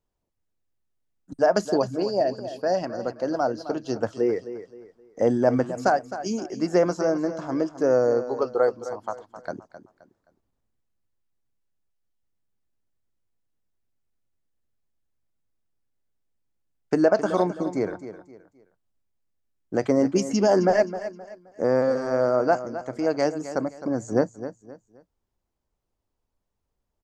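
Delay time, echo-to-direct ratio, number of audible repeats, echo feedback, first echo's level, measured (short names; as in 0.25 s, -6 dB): 0.262 s, -12.0 dB, 3, 32%, -12.5 dB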